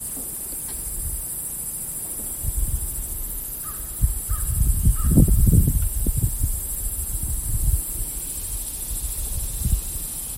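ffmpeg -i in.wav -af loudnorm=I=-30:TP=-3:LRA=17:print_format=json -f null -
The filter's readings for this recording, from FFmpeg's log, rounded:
"input_i" : "-24.6",
"input_tp" : "-2.3",
"input_lra" : "5.6",
"input_thresh" : "-34.6",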